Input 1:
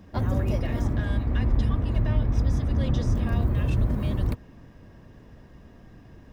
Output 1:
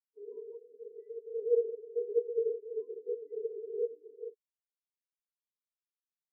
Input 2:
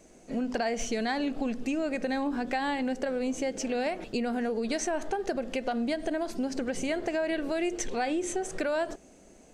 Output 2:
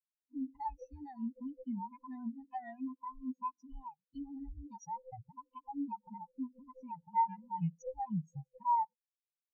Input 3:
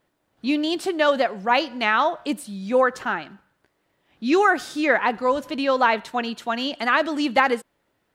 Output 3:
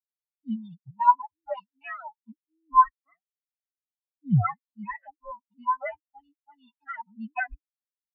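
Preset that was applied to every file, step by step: band inversion scrambler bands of 500 Hz; bell 4400 Hz +9 dB 2.4 oct; spectral expander 4:1; gain -7.5 dB

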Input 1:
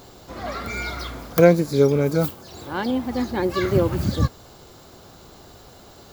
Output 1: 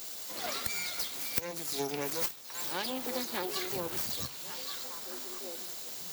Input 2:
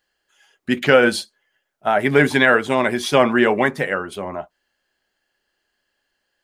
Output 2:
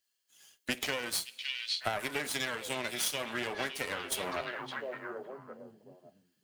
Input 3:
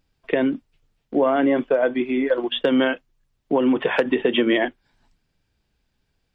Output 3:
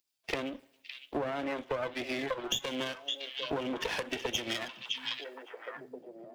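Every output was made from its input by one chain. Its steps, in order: bin magnitudes rounded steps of 15 dB; bell 1300 Hz -7.5 dB 1.4 oct; in parallel at -2 dB: limiter -11 dBFS; on the sum: tilt +4 dB/oct; two-slope reverb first 0.43 s, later 1.6 s, from -17 dB, DRR 17.5 dB; half-wave rectifier; HPF 170 Hz 6 dB/oct; on a send: delay with a stepping band-pass 0.561 s, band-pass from 3300 Hz, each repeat -1.4 oct, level -8.5 dB; on the sum: compressor 20:1, threshold -30 dBFS; three-band expander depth 40%

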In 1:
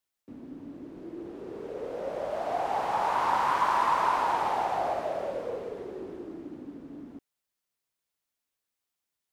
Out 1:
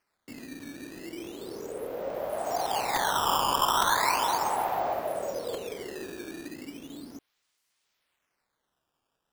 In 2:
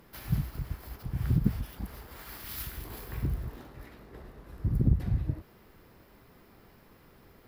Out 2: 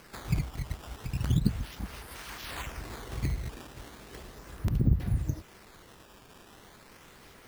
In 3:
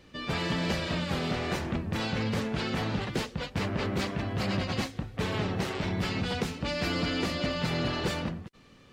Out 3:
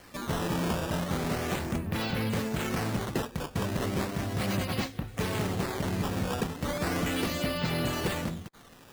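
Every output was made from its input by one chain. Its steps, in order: decimation with a swept rate 12×, swing 160% 0.36 Hz; crackling interface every 0.86 s, samples 128, repeat, from 0.38; mismatched tape noise reduction encoder only

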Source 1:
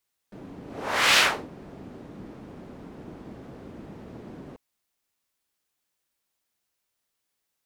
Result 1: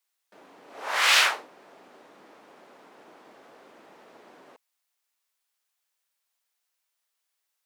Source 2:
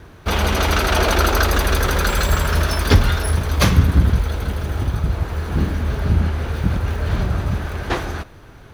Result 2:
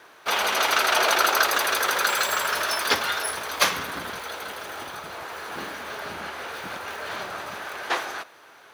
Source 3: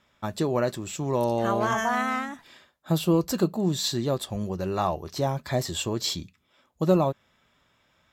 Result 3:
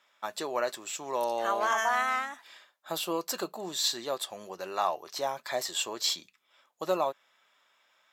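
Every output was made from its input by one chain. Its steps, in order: HPF 680 Hz 12 dB/oct

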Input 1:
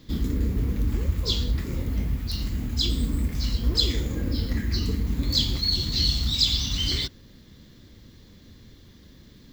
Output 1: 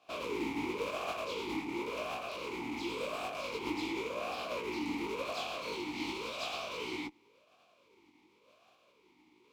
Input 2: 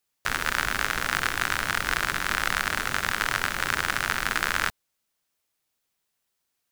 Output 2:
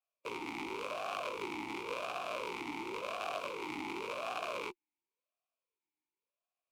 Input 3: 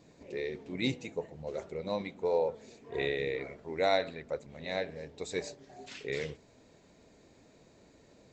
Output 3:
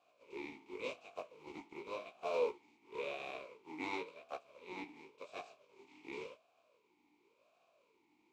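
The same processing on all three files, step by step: spectral contrast lowered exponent 0.34; chorus 0.44 Hz, delay 16 ms, depth 4.2 ms; in parallel at -5 dB: Schmitt trigger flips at -33 dBFS; on the sum: vowel sweep a-u 0.92 Hz; gain +3.5 dB

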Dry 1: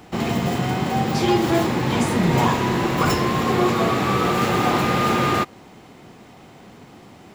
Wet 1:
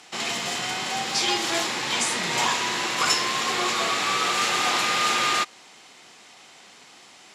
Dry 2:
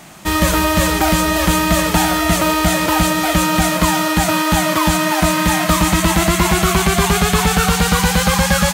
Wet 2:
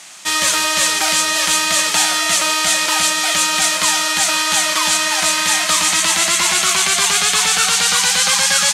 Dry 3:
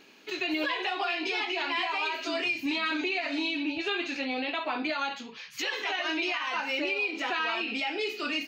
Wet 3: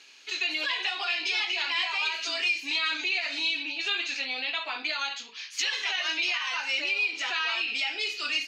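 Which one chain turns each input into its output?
weighting filter ITU-R 468; gain -4 dB

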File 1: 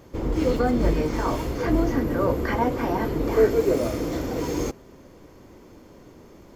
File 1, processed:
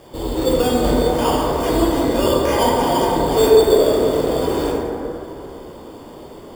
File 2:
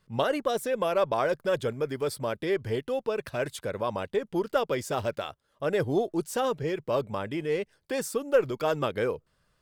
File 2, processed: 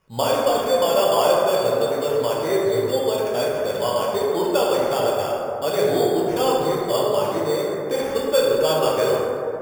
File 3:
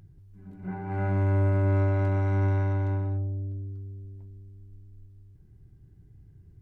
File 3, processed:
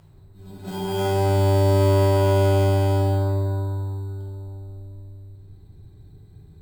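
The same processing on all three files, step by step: bell 700 Hz +10 dB 2 oct; in parallel at -1 dB: compressor, threshold -32 dBFS; on the sum: sample-and-hold 11×; plate-style reverb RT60 3 s, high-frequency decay 0.3×, DRR -5.5 dB; gain -7 dB

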